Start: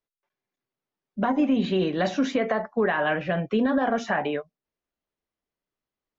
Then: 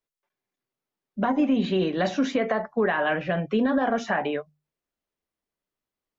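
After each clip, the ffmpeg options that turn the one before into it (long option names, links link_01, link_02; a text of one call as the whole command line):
ffmpeg -i in.wav -af "bandreject=frequency=50:width_type=h:width=6,bandreject=frequency=100:width_type=h:width=6,bandreject=frequency=150:width_type=h:width=6" out.wav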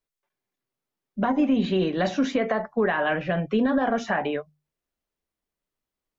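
ffmpeg -i in.wav -af "lowshelf=frequency=80:gain=7.5" out.wav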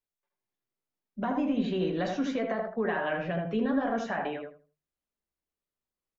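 ffmpeg -i in.wav -filter_complex "[0:a]asplit=2[link_01][link_02];[link_02]adelay=18,volume=-11dB[link_03];[link_01][link_03]amix=inputs=2:normalize=0,asplit=2[link_04][link_05];[link_05]adelay=80,lowpass=frequency=1500:poles=1,volume=-3dB,asplit=2[link_06][link_07];[link_07]adelay=80,lowpass=frequency=1500:poles=1,volume=0.25,asplit=2[link_08][link_09];[link_09]adelay=80,lowpass=frequency=1500:poles=1,volume=0.25,asplit=2[link_10][link_11];[link_11]adelay=80,lowpass=frequency=1500:poles=1,volume=0.25[link_12];[link_06][link_08][link_10][link_12]amix=inputs=4:normalize=0[link_13];[link_04][link_13]amix=inputs=2:normalize=0,volume=-8dB" out.wav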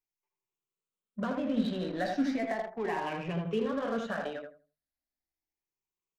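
ffmpeg -i in.wav -filter_complex "[0:a]afftfilt=real='re*pow(10,12/40*sin(2*PI*(0.73*log(max(b,1)*sr/1024/100)/log(2)-(0.36)*(pts-256)/sr)))':imag='im*pow(10,12/40*sin(2*PI*(0.73*log(max(b,1)*sr/1024/100)/log(2)-(0.36)*(pts-256)/sr)))':win_size=1024:overlap=0.75,asplit=2[link_01][link_02];[link_02]acrusher=bits=4:mix=0:aa=0.5,volume=-9dB[link_03];[link_01][link_03]amix=inputs=2:normalize=0,volume=-6.5dB" out.wav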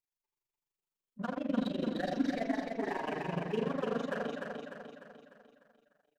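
ffmpeg -i in.wav -filter_complex "[0:a]tremolo=f=24:d=0.947,asplit=2[link_01][link_02];[link_02]aecho=0:1:299|598|897|1196|1495|1794:0.631|0.309|0.151|0.0742|0.0364|0.0178[link_03];[link_01][link_03]amix=inputs=2:normalize=0" out.wav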